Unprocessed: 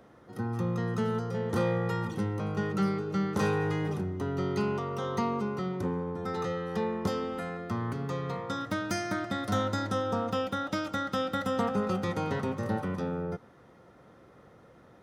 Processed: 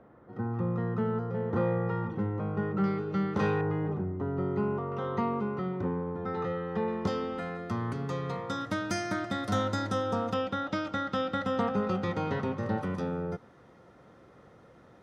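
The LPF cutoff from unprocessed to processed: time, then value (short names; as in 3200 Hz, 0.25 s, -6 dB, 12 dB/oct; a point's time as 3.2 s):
1600 Hz
from 2.84 s 3300 Hz
from 3.61 s 1300 Hz
from 4.92 s 2300 Hz
from 6.88 s 5300 Hz
from 7.55 s 9900 Hz
from 10.34 s 4300 Hz
from 12.81 s 9700 Hz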